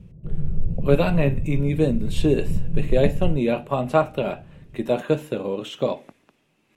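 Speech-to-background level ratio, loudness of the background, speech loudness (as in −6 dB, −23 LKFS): 6.0 dB, −29.5 LKFS, −23.5 LKFS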